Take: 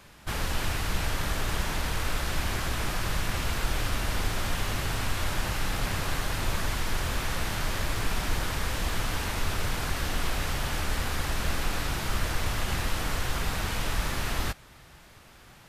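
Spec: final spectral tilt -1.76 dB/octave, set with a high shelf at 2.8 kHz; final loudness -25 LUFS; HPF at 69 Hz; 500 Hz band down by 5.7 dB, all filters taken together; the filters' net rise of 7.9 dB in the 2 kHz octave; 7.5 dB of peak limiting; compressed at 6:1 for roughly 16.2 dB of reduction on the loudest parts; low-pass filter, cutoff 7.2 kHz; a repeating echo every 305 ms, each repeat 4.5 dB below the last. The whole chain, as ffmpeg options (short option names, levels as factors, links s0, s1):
-af "highpass=69,lowpass=7200,equalizer=f=500:t=o:g=-8.5,equalizer=f=2000:t=o:g=7,highshelf=f=2800:g=8.5,acompressor=threshold=0.00708:ratio=6,alimiter=level_in=4.73:limit=0.0631:level=0:latency=1,volume=0.211,aecho=1:1:305|610|915|1220|1525|1830|2135|2440|2745:0.596|0.357|0.214|0.129|0.0772|0.0463|0.0278|0.0167|0.01,volume=8.41"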